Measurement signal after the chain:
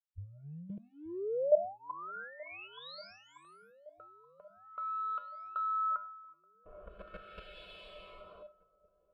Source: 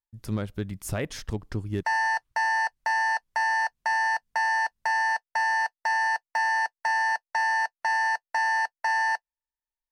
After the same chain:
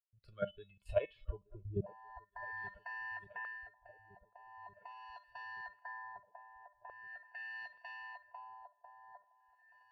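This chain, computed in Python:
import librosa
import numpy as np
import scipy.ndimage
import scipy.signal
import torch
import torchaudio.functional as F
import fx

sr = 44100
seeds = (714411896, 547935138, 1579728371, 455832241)

p1 = np.clip(x, -10.0 ** (-29.5 / 20.0), 10.0 ** (-29.5 / 20.0))
p2 = x + (p1 * librosa.db_to_amplitude(-11.5))
p3 = fx.highpass(p2, sr, hz=42.0, slope=6)
p4 = fx.comb_fb(p3, sr, f0_hz=200.0, decay_s=0.26, harmonics='odd', damping=0.0, mix_pct=90)
p5 = fx.level_steps(p4, sr, step_db=12)
p6 = fx.noise_reduce_blind(p5, sr, reduce_db=18)
p7 = fx.echo_wet_highpass(p6, sr, ms=562, feedback_pct=31, hz=1500.0, wet_db=-24)
p8 = fx.filter_lfo_notch(p7, sr, shape='saw_up', hz=0.29, low_hz=840.0, high_hz=4400.0, q=1.1)
p9 = fx.peak_eq(p8, sr, hz=210.0, db=-13.5, octaves=0.72)
p10 = fx.fixed_phaser(p9, sr, hz=1300.0, stages=8)
p11 = p10 + fx.echo_swing(p10, sr, ms=1463, ratio=1.5, feedback_pct=46, wet_db=-22, dry=0)
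p12 = fx.filter_lfo_lowpass(p11, sr, shape='sine', hz=0.42, low_hz=570.0, high_hz=3300.0, q=1.2)
p13 = fx.bass_treble(p12, sr, bass_db=3, treble_db=-6)
y = p13 * librosa.db_to_amplitude(15.0)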